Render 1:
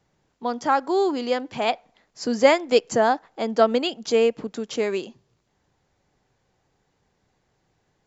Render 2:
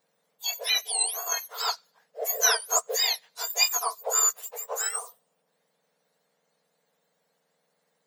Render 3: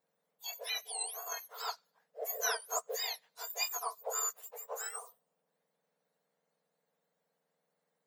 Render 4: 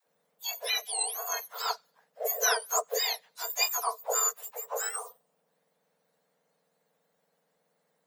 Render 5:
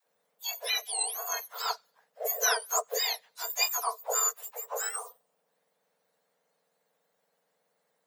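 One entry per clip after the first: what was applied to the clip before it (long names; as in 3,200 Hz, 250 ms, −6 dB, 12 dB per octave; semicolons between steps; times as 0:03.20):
frequency axis turned over on the octave scale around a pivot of 1,800 Hz
parametric band 5,200 Hz −6 dB 2.7 octaves; level −7.5 dB
all-pass dispersion lows, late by 81 ms, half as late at 350 Hz; level +7.5 dB
low-shelf EQ 210 Hz −11.5 dB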